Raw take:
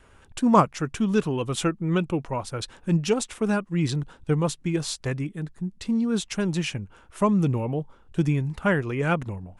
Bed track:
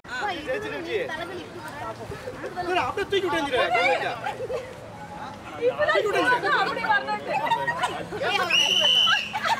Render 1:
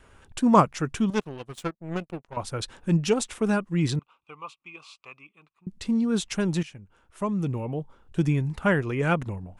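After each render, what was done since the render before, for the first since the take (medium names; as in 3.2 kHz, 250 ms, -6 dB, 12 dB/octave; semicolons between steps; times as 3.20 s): 1.10–2.37 s: power-law waveshaper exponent 2; 3.99–5.67 s: two resonant band-passes 1.7 kHz, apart 1.1 oct; 6.63–8.39 s: fade in, from -16 dB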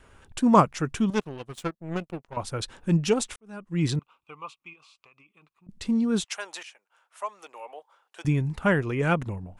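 3.36–3.83 s: fade in quadratic; 4.73–5.69 s: compression 16:1, threshold -52 dBFS; 6.24–8.25 s: high-pass 650 Hz 24 dB/octave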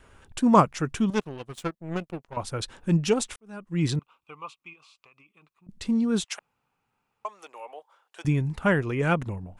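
6.39–7.25 s: room tone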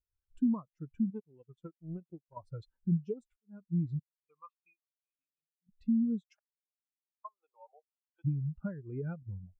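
compression 8:1, threshold -31 dBFS, peak gain reduction 18.5 dB; spectral contrast expander 2.5:1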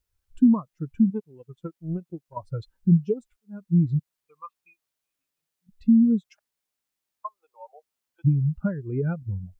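trim +11.5 dB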